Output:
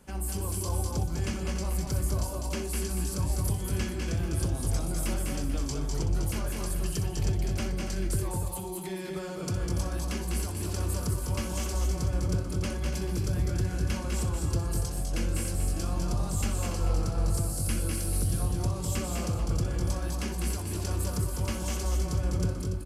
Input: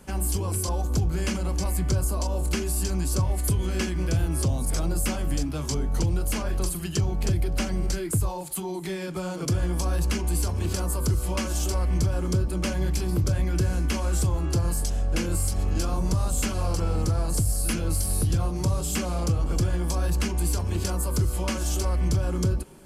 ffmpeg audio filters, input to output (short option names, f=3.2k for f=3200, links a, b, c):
-af "aecho=1:1:62|201|222|287|438:0.299|0.596|0.422|0.335|0.211,volume=-7dB"